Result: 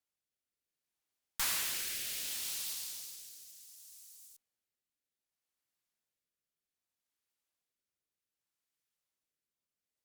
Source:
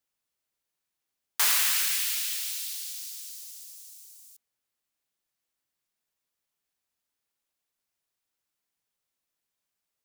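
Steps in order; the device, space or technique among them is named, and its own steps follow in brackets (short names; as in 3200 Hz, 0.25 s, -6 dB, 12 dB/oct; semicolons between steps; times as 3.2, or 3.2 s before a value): overdriven rotary cabinet (tube stage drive 26 dB, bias 0.65; rotary speaker horn 0.65 Hz)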